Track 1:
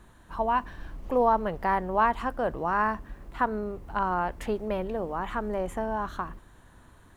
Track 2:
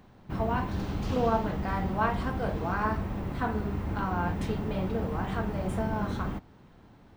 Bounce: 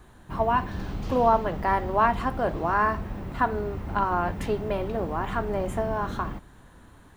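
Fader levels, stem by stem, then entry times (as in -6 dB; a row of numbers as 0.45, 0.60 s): +1.5, -2.0 dB; 0.00, 0.00 s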